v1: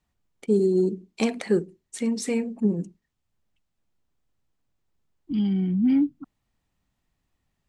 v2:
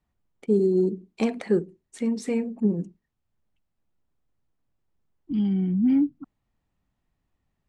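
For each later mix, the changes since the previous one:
master: add treble shelf 2.7 kHz -9.5 dB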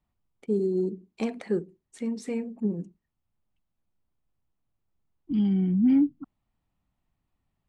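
first voice -5.0 dB

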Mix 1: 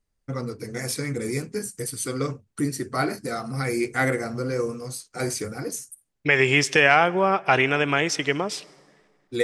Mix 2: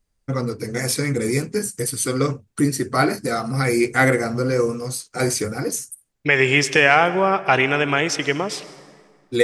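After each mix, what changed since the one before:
first voice +6.5 dB; second voice: send +10.5 dB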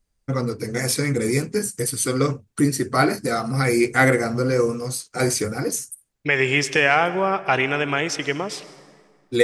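second voice -3.0 dB

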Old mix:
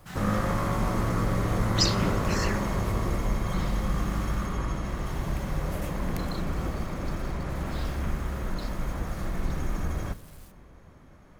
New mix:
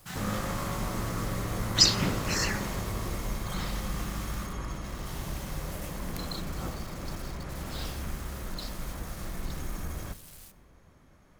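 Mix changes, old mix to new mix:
background -6.5 dB; master: add treble shelf 2.9 kHz +7 dB

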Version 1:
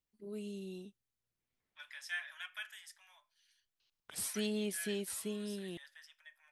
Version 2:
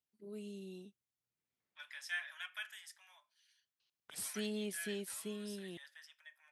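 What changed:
first voice -3.5 dB; master: add high-pass 98 Hz

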